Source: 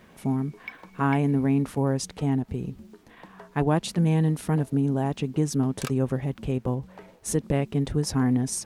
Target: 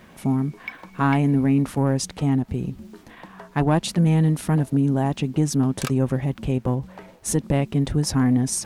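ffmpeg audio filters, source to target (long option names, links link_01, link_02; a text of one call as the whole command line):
ffmpeg -i in.wav -af "equalizer=frequency=440:width_type=o:width=0.21:gain=-5.5,areverse,acompressor=mode=upward:threshold=-42dB:ratio=2.5,areverse,asoftclip=type=tanh:threshold=-14dB,volume=5dB" out.wav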